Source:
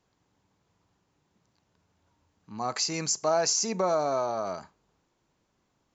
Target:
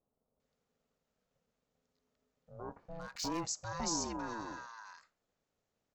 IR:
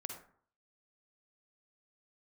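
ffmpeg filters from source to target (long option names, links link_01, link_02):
-filter_complex "[0:a]aeval=exprs='val(0)*sin(2*PI*340*n/s)':channel_layout=same,asettb=1/sr,asplit=3[link_01][link_02][link_03];[link_01]atrim=end=2.574[link_04];[link_02]atrim=start=2.57:end=3.05,asetpts=PTS-STARTPTS,afade=type=in:duration=0.004:curve=qsin,afade=type=out:start_time=0.476:duration=0.004:curve=qsin,adynamicsmooth=sensitivity=7.5:basefreq=2500[link_05];[link_03]atrim=start=3.046[link_06];[link_04][link_05]acrossfade=duration=0.004:curve1=hsin:curve2=qsin[link_07];[link_07][link_06]acrossfade=duration=0.004:curve1=qsin:curve2=hsin,acrossover=split=1100[link_08][link_09];[link_09]adelay=400[link_10];[link_08][link_10]amix=inputs=2:normalize=0,volume=-8dB"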